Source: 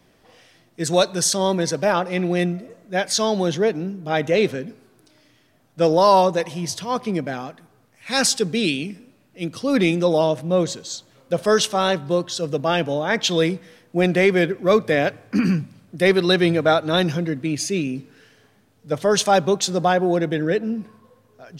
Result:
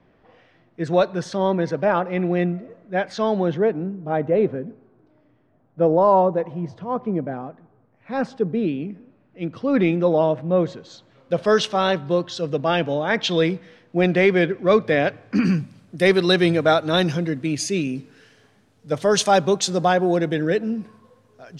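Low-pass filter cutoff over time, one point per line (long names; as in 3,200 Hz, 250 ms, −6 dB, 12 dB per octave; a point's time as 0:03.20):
0:03.37 2,000 Hz
0:04.26 1,000 Hz
0:08.68 1,000 Hz
0:09.45 2,000 Hz
0:10.80 2,000 Hz
0:11.34 4,000 Hz
0:15.21 4,000 Hz
0:15.62 9,800 Hz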